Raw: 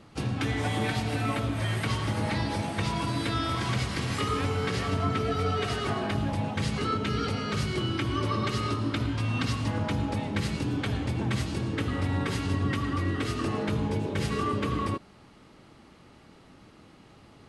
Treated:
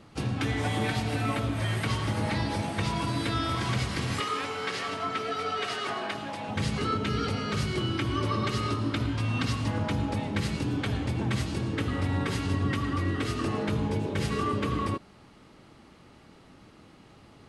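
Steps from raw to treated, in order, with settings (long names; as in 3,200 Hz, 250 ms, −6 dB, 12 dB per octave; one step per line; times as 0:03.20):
0:04.20–0:06.49: meter weighting curve A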